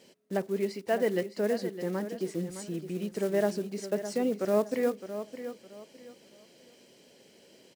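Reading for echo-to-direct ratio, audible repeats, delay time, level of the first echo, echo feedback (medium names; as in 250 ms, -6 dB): -10.5 dB, 3, 612 ms, -11.0 dB, 27%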